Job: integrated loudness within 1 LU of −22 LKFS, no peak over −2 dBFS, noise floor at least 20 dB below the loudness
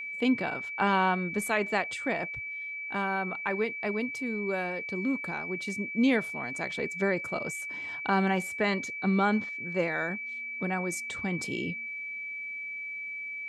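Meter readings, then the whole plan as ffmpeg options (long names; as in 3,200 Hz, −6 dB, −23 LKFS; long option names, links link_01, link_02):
interfering tone 2,300 Hz; level of the tone −35 dBFS; integrated loudness −30.5 LKFS; sample peak −13.0 dBFS; target loudness −22.0 LKFS
→ -af "bandreject=frequency=2300:width=30"
-af "volume=8.5dB"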